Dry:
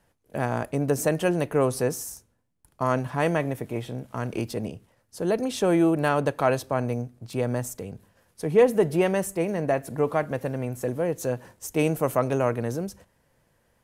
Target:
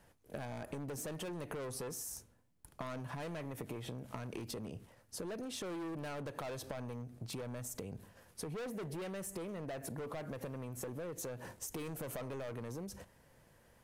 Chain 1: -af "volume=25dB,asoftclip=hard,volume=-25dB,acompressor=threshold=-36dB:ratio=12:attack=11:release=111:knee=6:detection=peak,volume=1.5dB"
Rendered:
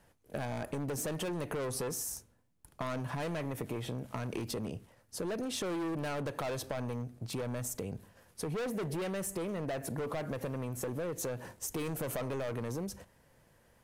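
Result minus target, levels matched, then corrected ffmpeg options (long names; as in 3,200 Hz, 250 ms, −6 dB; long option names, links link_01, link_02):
downward compressor: peak gain reduction −6.5 dB
-af "volume=25dB,asoftclip=hard,volume=-25dB,acompressor=threshold=-43dB:ratio=12:attack=11:release=111:knee=6:detection=peak,volume=1.5dB"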